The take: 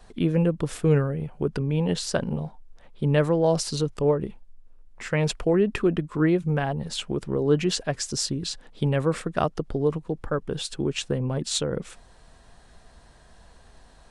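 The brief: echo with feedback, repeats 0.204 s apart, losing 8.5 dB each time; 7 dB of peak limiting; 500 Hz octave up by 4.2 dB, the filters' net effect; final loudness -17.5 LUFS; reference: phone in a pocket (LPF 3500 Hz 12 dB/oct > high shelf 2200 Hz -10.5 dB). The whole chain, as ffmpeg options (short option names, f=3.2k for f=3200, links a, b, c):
-af "equalizer=f=500:t=o:g=5.5,alimiter=limit=-13dB:level=0:latency=1,lowpass=3.5k,highshelf=f=2.2k:g=-10.5,aecho=1:1:204|408|612|816:0.376|0.143|0.0543|0.0206,volume=7.5dB"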